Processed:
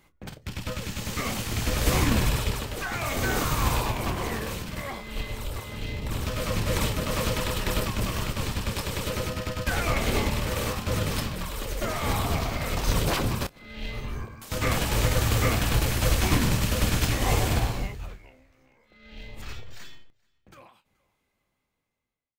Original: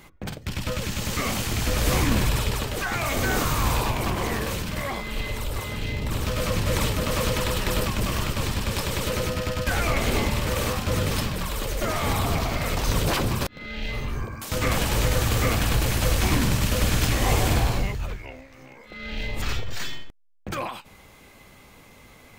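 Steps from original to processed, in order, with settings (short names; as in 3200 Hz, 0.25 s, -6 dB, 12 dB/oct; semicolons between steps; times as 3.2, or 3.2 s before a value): ending faded out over 5.84 s; doubler 27 ms -12 dB; feedback echo 0.428 s, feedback 27%, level -24 dB; upward expander 1.5:1, over -42 dBFS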